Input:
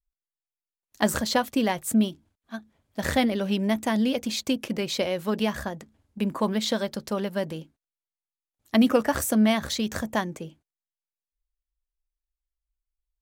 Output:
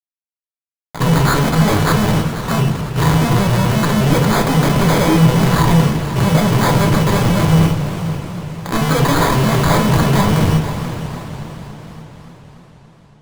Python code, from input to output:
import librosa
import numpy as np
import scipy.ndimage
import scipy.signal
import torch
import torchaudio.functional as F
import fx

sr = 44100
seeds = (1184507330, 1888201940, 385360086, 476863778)

p1 = fx.pitch_trill(x, sr, semitones=-9.5, every_ms=89)
p2 = scipy.signal.sosfilt(scipy.signal.butter(4, 4500.0, 'lowpass', fs=sr, output='sos'), p1)
p3 = fx.peak_eq(p2, sr, hz=160.0, db=13.0, octaves=0.63)
p4 = fx.over_compress(p3, sr, threshold_db=-37.0, ratio=-1.0)
p5 = p3 + (p4 * librosa.db_to_amplitude(-0.5))
p6 = fx.fuzz(p5, sr, gain_db=43.0, gate_db=-51.0)
p7 = fx.sample_hold(p6, sr, seeds[0], rate_hz=2800.0, jitter_pct=0)
p8 = fx.small_body(p7, sr, hz=(1000.0, 2900.0), ring_ms=45, db=7)
p9 = p8 + fx.echo_feedback(p8, sr, ms=488, feedback_pct=39, wet_db=-13.0, dry=0)
p10 = fx.room_shoebox(p9, sr, seeds[1], volume_m3=35.0, walls='mixed', distance_m=0.38)
p11 = fx.echo_warbled(p10, sr, ms=285, feedback_pct=71, rate_hz=2.8, cents=168, wet_db=-13)
y = p11 * librosa.db_to_amplitude(-2.5)